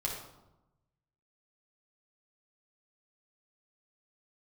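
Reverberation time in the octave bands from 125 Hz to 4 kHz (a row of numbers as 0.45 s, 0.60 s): 1.4 s, 1.2 s, 0.95 s, 0.95 s, 0.65 s, 0.60 s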